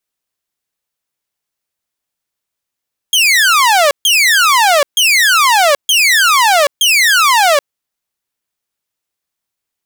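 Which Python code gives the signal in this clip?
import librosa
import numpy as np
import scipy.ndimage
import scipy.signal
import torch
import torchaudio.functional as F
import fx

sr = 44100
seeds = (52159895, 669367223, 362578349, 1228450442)

y = fx.laser_zaps(sr, level_db=-4.5, start_hz=3300.0, end_hz=550.0, length_s=0.78, wave='saw', shots=5, gap_s=0.14)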